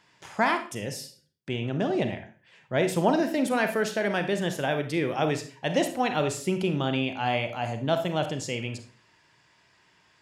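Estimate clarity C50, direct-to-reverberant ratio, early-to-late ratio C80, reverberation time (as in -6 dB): 9.5 dB, 7.5 dB, 15.0 dB, 0.45 s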